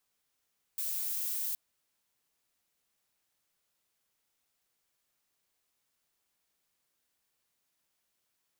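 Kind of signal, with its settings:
noise violet, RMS −34.5 dBFS 0.77 s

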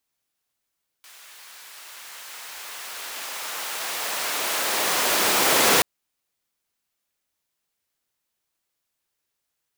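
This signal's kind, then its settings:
filter sweep on noise pink, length 4.78 s highpass, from 1,400 Hz, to 310 Hz, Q 0.71, linear, gain ramp +29 dB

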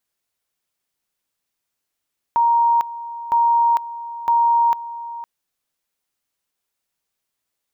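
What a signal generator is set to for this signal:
tone at two levels in turn 936 Hz −12.5 dBFS, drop 15.5 dB, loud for 0.45 s, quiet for 0.51 s, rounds 3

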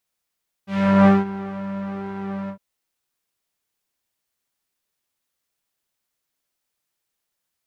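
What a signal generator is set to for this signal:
subtractive patch with pulse-width modulation G3, sub −17 dB, noise −6 dB, filter lowpass, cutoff 810 Hz, Q 0.99, filter envelope 2 octaves, attack 384 ms, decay 0.19 s, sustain −18.5 dB, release 0.09 s, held 1.82 s, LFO 1.2 Hz, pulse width 42%, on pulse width 10%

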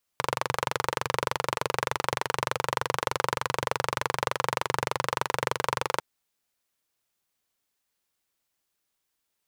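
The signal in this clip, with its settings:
pulse-train model of a single-cylinder engine, steady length 5.80 s, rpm 2,800, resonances 130/500/940 Hz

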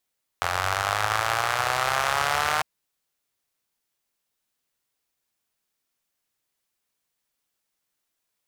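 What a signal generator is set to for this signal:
pulse-train model of a four-cylinder engine, changing speed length 2.20 s, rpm 2,600, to 4,600, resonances 94/790/1,200 Hz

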